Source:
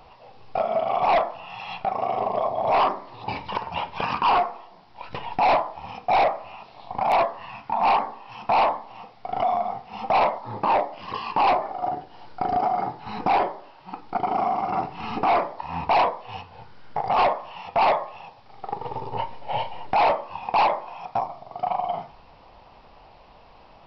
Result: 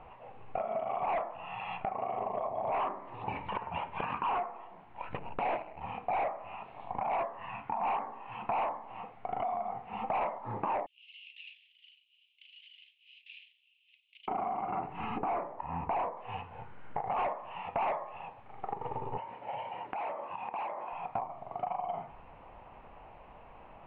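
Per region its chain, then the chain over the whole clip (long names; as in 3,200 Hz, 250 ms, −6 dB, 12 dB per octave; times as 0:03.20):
0:05.17–0:05.81: running median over 41 samples + highs frequency-modulated by the lows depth 0.52 ms
0:10.86–0:14.28: lower of the sound and its delayed copy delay 0.35 ms + Butterworth high-pass 2,700 Hz 72 dB per octave + bad sample-rate conversion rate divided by 4×, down filtered, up zero stuff
0:15.18–0:16.17: high-shelf EQ 2,100 Hz −10.5 dB + one half of a high-frequency compander decoder only
0:19.17–0:20.93: Bessel high-pass filter 180 Hz + downward compressor 10 to 1, threshold −31 dBFS
whole clip: downward compressor 3 to 1, threshold −32 dBFS; Butterworth low-pass 2,700 Hz 36 dB per octave; level −2 dB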